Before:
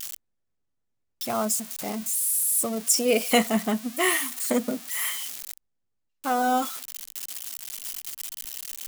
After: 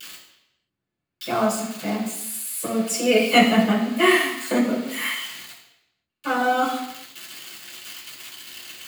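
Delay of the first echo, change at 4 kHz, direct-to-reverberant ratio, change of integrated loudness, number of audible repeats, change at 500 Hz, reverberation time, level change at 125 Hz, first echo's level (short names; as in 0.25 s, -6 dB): none, +5.0 dB, -6.5 dB, +4.0 dB, none, +4.5 dB, 0.85 s, +8.0 dB, none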